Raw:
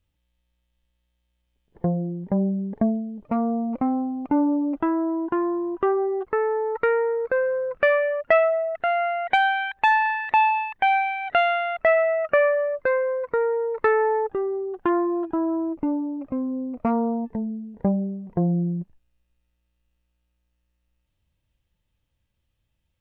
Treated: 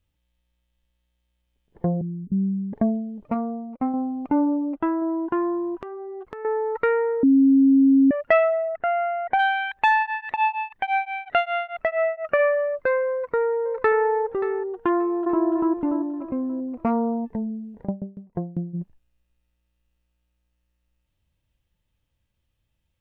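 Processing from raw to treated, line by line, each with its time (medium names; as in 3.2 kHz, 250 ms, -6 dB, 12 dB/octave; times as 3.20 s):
2.01–2.73 s: inverse Chebyshev band-stop 630–3600 Hz, stop band 50 dB
3.34–3.94 s: upward expansion 2.5:1, over -42 dBFS
4.45–5.02 s: upward expansion, over -41 dBFS
5.77–6.45 s: compression 16:1, threshold -32 dBFS
7.23–8.11 s: bleep 271 Hz -12 dBFS
8.68–9.38 s: low-pass 2 kHz -> 1.3 kHz
10.01–12.38 s: tremolo of two beating tones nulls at 7.1 Hz -> 3.6 Hz
13.07–14.05 s: echo throw 580 ms, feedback 20%, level -12.5 dB
14.97–15.44 s: echo throw 290 ms, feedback 45%, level 0 dB
17.83–18.73 s: sawtooth tremolo in dB decaying 8.5 Hz -> 3.5 Hz, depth 24 dB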